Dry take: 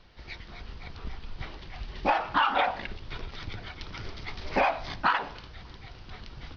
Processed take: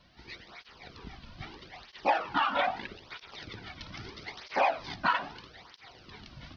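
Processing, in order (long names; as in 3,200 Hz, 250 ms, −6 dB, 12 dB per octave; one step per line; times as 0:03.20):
high-shelf EQ 5,200 Hz +4.5 dB
through-zero flanger with one copy inverted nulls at 0.78 Hz, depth 2.6 ms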